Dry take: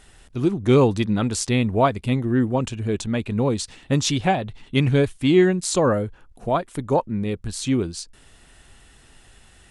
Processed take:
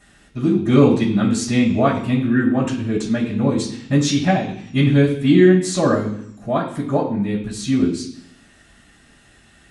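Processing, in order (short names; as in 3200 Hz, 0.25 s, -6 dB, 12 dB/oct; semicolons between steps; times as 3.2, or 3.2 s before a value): 2.22–2.81 bell 1500 Hz +8.5 dB 0.52 oct; reverb RT60 0.65 s, pre-delay 3 ms, DRR -12 dB; gain -8 dB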